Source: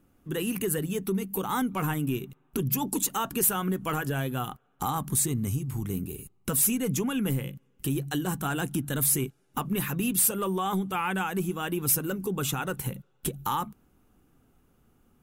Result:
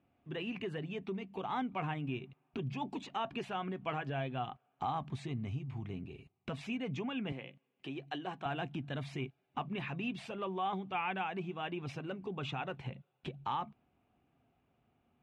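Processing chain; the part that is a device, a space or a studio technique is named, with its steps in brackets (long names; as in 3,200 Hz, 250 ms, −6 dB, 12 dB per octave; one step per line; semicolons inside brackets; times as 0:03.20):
guitar cabinet (loudspeaker in its box 87–3,700 Hz, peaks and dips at 190 Hz −5 dB, 310 Hz −4 dB, 470 Hz −4 dB, 690 Hz +9 dB, 1,400 Hz −5 dB, 2,400 Hz +6 dB)
0:07.32–0:08.46: high-pass filter 260 Hz 12 dB per octave
level −7.5 dB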